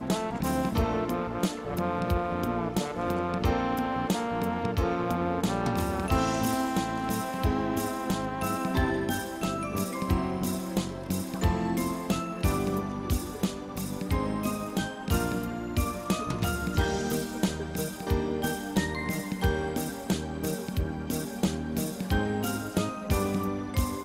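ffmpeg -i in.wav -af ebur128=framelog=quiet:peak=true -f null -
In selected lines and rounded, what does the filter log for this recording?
Integrated loudness:
  I:         -29.8 LUFS
  Threshold: -39.7 LUFS
Loudness range:
  LRA:         2.4 LU
  Threshold: -49.8 LUFS
  LRA low:   -30.8 LUFS
  LRA high:  -28.4 LUFS
True peak:
  Peak:      -12.9 dBFS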